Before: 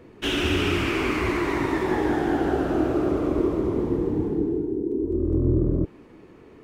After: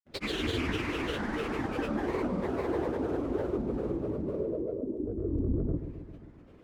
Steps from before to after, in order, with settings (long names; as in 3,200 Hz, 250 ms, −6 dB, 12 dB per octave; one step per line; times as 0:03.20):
granular cloud, pitch spread up and down by 7 semitones
bucket-brigade delay 133 ms, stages 1,024, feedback 63%, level −10 dB
level −7.5 dB